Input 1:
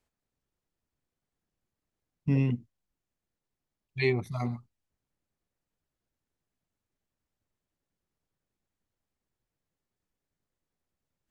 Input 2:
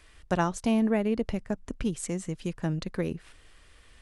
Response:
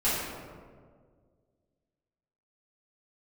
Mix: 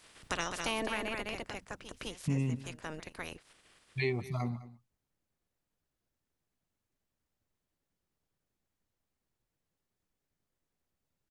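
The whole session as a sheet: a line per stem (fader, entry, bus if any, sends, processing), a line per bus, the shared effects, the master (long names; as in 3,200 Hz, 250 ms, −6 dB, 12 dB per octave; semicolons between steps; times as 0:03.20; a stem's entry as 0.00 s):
+0.5 dB, 0.00 s, no send, echo send −21 dB, no processing
−5.0 dB, 0.00 s, no send, echo send −7.5 dB, ceiling on every frequency bin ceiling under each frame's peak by 27 dB; automatic ducking −23 dB, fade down 1.45 s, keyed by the first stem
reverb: not used
echo: single-tap delay 206 ms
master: downward compressor 2 to 1, threshold −33 dBFS, peak gain reduction 7 dB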